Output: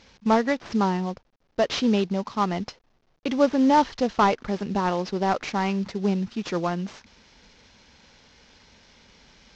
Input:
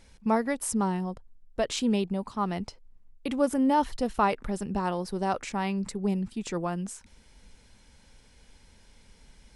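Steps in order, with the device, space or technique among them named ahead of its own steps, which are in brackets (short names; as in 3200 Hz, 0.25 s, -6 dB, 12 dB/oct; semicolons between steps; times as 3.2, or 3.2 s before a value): early wireless headset (HPF 160 Hz 6 dB/oct; CVSD 32 kbps); gain +6 dB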